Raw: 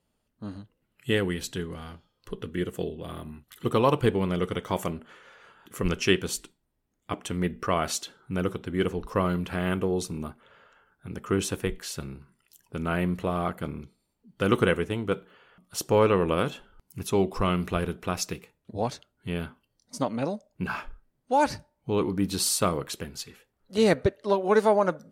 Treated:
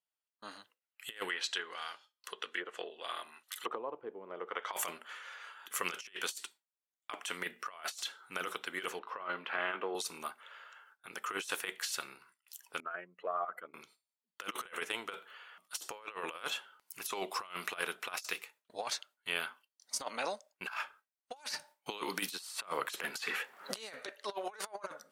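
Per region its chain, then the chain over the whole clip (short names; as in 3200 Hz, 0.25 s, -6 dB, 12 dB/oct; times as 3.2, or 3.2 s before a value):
1.29–4.73 treble ducked by the level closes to 310 Hz, closed at -21 dBFS + tone controls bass -14 dB, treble +3 dB
8.99–9.95 HPF 170 Hz 24 dB/oct + air absorption 400 m + doubler 19 ms -11 dB
12.8–13.74 spectral contrast raised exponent 2.1 + HPF 400 Hz + Doppler distortion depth 0.1 ms
21.36–24.07 resonant high-pass 150 Hz, resonance Q 1.5 + three-band squash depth 100%
whole clip: HPF 1100 Hz 12 dB/oct; gate with hold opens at -55 dBFS; negative-ratio compressor -39 dBFS, ratio -0.5; gain +1 dB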